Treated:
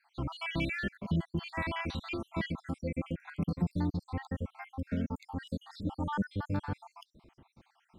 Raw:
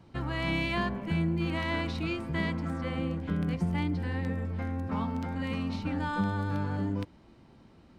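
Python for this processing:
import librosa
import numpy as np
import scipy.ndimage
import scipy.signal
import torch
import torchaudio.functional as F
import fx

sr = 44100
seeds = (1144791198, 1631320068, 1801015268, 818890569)

y = fx.spec_dropout(x, sr, seeds[0], share_pct=65)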